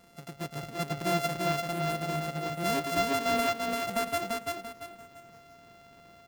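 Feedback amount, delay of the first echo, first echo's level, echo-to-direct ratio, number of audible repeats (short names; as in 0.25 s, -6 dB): 32%, 0.341 s, -3.0 dB, -2.5 dB, 4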